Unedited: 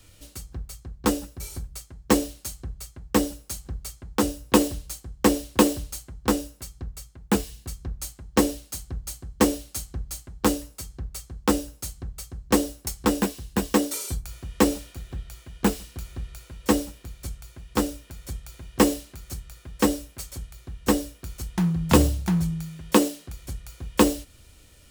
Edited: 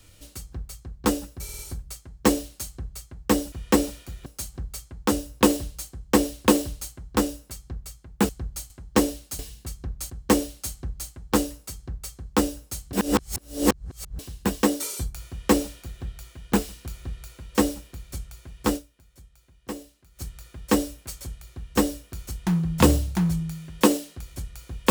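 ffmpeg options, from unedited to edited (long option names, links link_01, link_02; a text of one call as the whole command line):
ffmpeg -i in.wav -filter_complex "[0:a]asplit=14[link_01][link_02][link_03][link_04][link_05][link_06][link_07][link_08][link_09][link_10][link_11][link_12][link_13][link_14];[link_01]atrim=end=1.492[link_15];[link_02]atrim=start=1.438:end=1.492[link_16];[link_03]atrim=start=1.438:end=1.492[link_17];[link_04]atrim=start=1.438:end=3.372[link_18];[link_05]atrim=start=14.398:end=15.142[link_19];[link_06]atrim=start=3.368:end=7.402[link_20];[link_07]atrim=start=8.798:end=9.212[link_21];[link_08]atrim=start=8.108:end=8.802[link_22];[link_09]atrim=start=7.398:end=8.112[link_23];[link_10]atrim=start=9.208:end=12.042[link_24];[link_11]atrim=start=12.038:end=13.302,asetpts=PTS-STARTPTS,areverse[link_25];[link_12]atrim=start=13.298:end=18.22,asetpts=PTS-STARTPTS,afade=type=out:start_time=4.572:duration=0.35:curve=exp:silence=0.158489[link_26];[link_13]atrim=start=18.22:end=18.98,asetpts=PTS-STARTPTS,volume=-16dB[link_27];[link_14]atrim=start=18.98,asetpts=PTS-STARTPTS,afade=type=in:duration=0.35:curve=exp:silence=0.158489[link_28];[link_15][link_16]acrossfade=duration=0.004:curve1=hsin:curve2=hsin[link_29];[link_29][link_17]acrossfade=duration=0.004:curve1=hsin:curve2=hsin[link_30];[link_30][link_18]acrossfade=duration=0.004:curve1=hsin:curve2=hsin[link_31];[link_31][link_19]acrossfade=duration=0.004:curve1=hsin:curve2=hsin[link_32];[link_32][link_20]acrossfade=duration=0.004:curve1=hsin:curve2=hsin[link_33];[link_33][link_21]acrossfade=duration=0.004:curve1=hsin:curve2=hsin[link_34];[link_34][link_22]acrossfade=duration=0.004:curve1=hsin:curve2=hsin[link_35];[link_35][link_23]acrossfade=duration=0.004:curve1=hsin:curve2=hsin[link_36];[link_36][link_24]acrossfade=duration=0.004:curve1=hsin:curve2=hsin[link_37];[link_37][link_25]acrossfade=duration=0.004:curve1=hsin:curve2=hsin[link_38];[link_26][link_27][link_28]concat=n=3:v=0:a=1[link_39];[link_38][link_39]acrossfade=duration=0.004:curve1=hsin:curve2=hsin" out.wav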